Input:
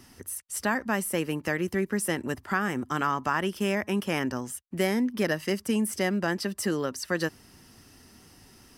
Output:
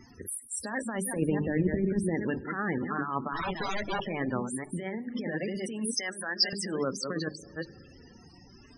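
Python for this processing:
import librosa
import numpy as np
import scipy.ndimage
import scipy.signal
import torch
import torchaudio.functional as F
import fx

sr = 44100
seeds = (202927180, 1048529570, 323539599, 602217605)

y = fx.reverse_delay(x, sr, ms=232, wet_db=-9.5)
y = fx.overflow_wrap(y, sr, gain_db=24.5, at=(3.33, 4.05))
y = fx.over_compress(y, sr, threshold_db=-29.0, ratio=-0.5)
y = fx.hum_notches(y, sr, base_hz=50, count=8)
y = fx.tilt_eq(y, sr, slope=-3.0, at=(1.16, 2.15))
y = fx.rev_spring(y, sr, rt60_s=2.8, pass_ms=(38,), chirp_ms=50, drr_db=16.5)
y = fx.wow_flutter(y, sr, seeds[0], rate_hz=2.1, depth_cents=18.0)
y = fx.dmg_crackle(y, sr, seeds[1], per_s=480.0, level_db=-38.0)
y = fx.echo_wet_highpass(y, sr, ms=99, feedback_pct=63, hz=4700.0, wet_db=-16.0)
y = fx.spec_topn(y, sr, count=32)
y = fx.weighting(y, sr, curve='ITU-R 468', at=(5.94, 6.53))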